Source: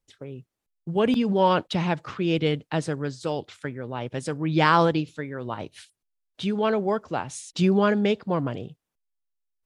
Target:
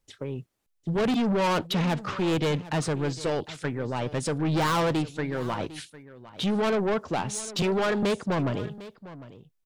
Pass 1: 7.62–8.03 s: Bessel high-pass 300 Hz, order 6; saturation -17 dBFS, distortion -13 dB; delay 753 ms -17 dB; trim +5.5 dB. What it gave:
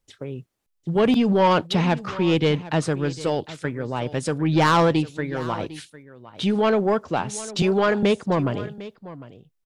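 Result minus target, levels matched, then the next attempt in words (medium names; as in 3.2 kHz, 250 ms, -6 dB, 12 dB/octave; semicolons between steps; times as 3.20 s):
saturation: distortion -8 dB
7.62–8.03 s: Bessel high-pass 300 Hz, order 6; saturation -27.5 dBFS, distortion -6 dB; delay 753 ms -17 dB; trim +5.5 dB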